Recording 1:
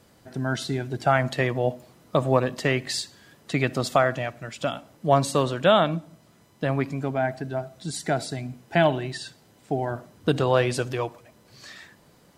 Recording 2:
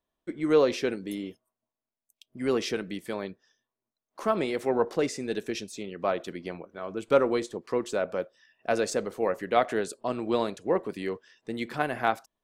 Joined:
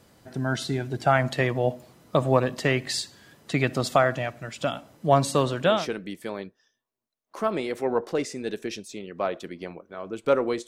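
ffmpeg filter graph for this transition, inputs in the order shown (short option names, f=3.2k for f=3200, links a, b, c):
-filter_complex "[0:a]apad=whole_dur=10.67,atrim=end=10.67,atrim=end=5.89,asetpts=PTS-STARTPTS[a];[1:a]atrim=start=2.45:end=7.51,asetpts=PTS-STARTPTS[b];[a][b]acrossfade=d=0.28:c1=tri:c2=tri"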